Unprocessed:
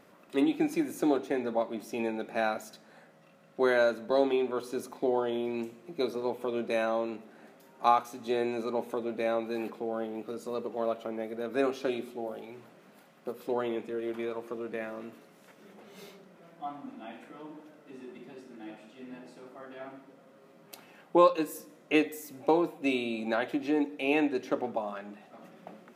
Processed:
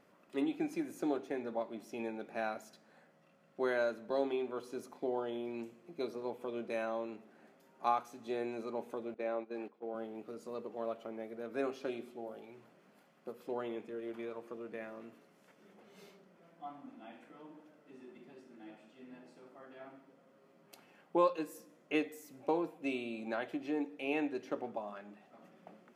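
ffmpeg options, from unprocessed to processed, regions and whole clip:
ffmpeg -i in.wav -filter_complex "[0:a]asettb=1/sr,asplit=3[link_01][link_02][link_03];[link_01]atrim=end=9.144[link_04];[link_02]atrim=start=9.14:end=9.95,asetpts=PTS-STARTPTS,afade=type=in:duration=0.004:curve=qsin,afade=type=out:start_time=0.806:duration=0.004:curve=qsin,agate=range=-13dB:threshold=-36dB:ratio=16:release=100:detection=peak,highpass=330,aemphasis=mode=reproduction:type=bsi[link_05];[link_03]atrim=start=9.946[link_06];[link_04][link_05]acrossfade=duration=0.004:curve1=hsin:curve2=qsin[link_07];[link_07][link_06]acrossfade=duration=0.004:curve1=qsin:curve2=hsin,highshelf=frequency=11000:gain=-6.5,bandreject=frequency=3800:width=16,volume=-8dB" out.wav

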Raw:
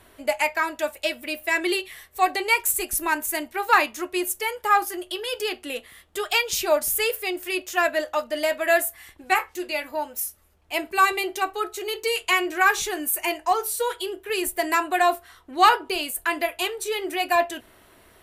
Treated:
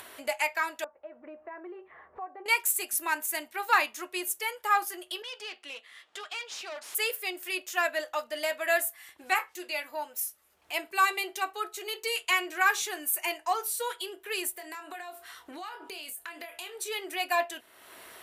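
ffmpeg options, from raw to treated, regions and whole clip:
ffmpeg -i in.wav -filter_complex "[0:a]asettb=1/sr,asplit=3[link_01][link_02][link_03];[link_01]atrim=end=0.844[link_04];[link_02]atrim=start=0.84:end=2.46,asetpts=PTS-STARTPTS,afade=type=in:duration=0.004:curve=qsin,afade=type=out:start_time=1.616:duration=0.004:curve=qsin,lowpass=frequency=1200:width=0.5412,lowpass=frequency=1200:width=1.3066,acompressor=threshold=-49dB:ratio=1.5:attack=3.2:release=140:knee=1:detection=peak[link_05];[link_03]atrim=start=2.456[link_06];[link_04][link_05]acrossfade=duration=0.004:curve1=hsin:curve2=qsin[link_07];[link_07][link_06]acrossfade=duration=0.004:curve1=qsin:curve2=hsin,asettb=1/sr,asplit=3[link_08][link_09][link_10];[link_08]atrim=end=5.224[link_11];[link_09]atrim=start=5.22:end=6.95,asetpts=PTS-STARTPTS,afade=type=in:duration=0.004:curve=qsin,afade=type=out:start_time=1.726:duration=0.004:curve=qsin,equalizer=frequency=280:width_type=o:width=2.3:gain=-6.5,aeval=exprs='(tanh(28.2*val(0)+0.65)-tanh(0.65))/28.2':channel_layout=same,highpass=220,lowpass=5600[link_12];[link_10]atrim=start=6.946[link_13];[link_11][link_12]acrossfade=duration=0.004:curve1=hsin:curve2=qsin[link_14];[link_14][link_13]acrossfade=duration=0.004:curve1=qsin:curve2=hsin,asettb=1/sr,asplit=3[link_15][link_16][link_17];[link_15]atrim=end=14.524[link_18];[link_16]atrim=start=14.52:end=16.76,asetpts=PTS-STARTPTS,afade=type=in:duration=0.004:curve=qsin,afade=type=out:start_time=2.236:duration=0.004:curve=qsin,acompressor=threshold=-33dB:ratio=8:attack=3.2:release=140:knee=1:detection=peak,asplit=2[link_19][link_20];[link_20]adelay=26,volume=-8.5dB[link_21];[link_19][link_21]amix=inputs=2:normalize=0,atrim=end_sample=98784[link_22];[link_17]atrim=start=16.756[link_23];[link_18][link_22]acrossfade=duration=0.004:curve1=hsin:curve2=qsin[link_24];[link_24][link_23]acrossfade=duration=0.004:curve1=qsin:curve2=hsin,highpass=frequency=790:poles=1,acompressor=mode=upward:threshold=-33dB:ratio=2.5,volume=-4dB" out.wav

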